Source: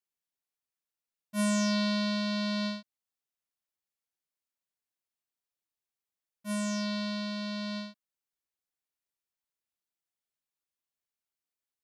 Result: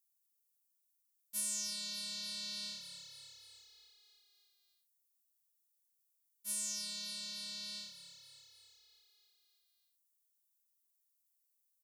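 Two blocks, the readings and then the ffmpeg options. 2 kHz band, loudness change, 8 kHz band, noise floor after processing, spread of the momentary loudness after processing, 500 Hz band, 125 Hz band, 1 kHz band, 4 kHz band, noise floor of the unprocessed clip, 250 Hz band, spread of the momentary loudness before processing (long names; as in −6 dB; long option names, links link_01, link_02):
−15.0 dB, −8.5 dB, +3.0 dB, −80 dBFS, 20 LU, −26.0 dB, can't be measured, −23.0 dB, −3.5 dB, below −85 dBFS, −28.5 dB, 12 LU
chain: -filter_complex "[0:a]equalizer=frequency=1100:width=0.35:gain=-13.5,asplit=8[link_01][link_02][link_03][link_04][link_05][link_06][link_07][link_08];[link_02]adelay=293,afreqshift=-35,volume=-13dB[link_09];[link_03]adelay=586,afreqshift=-70,volume=-17dB[link_10];[link_04]adelay=879,afreqshift=-105,volume=-21dB[link_11];[link_05]adelay=1172,afreqshift=-140,volume=-25dB[link_12];[link_06]adelay=1465,afreqshift=-175,volume=-29.1dB[link_13];[link_07]adelay=1758,afreqshift=-210,volume=-33.1dB[link_14];[link_08]adelay=2051,afreqshift=-245,volume=-37.1dB[link_15];[link_01][link_09][link_10][link_11][link_12][link_13][link_14][link_15]amix=inputs=8:normalize=0,acompressor=threshold=-36dB:ratio=6,aderivative,volume=9.5dB"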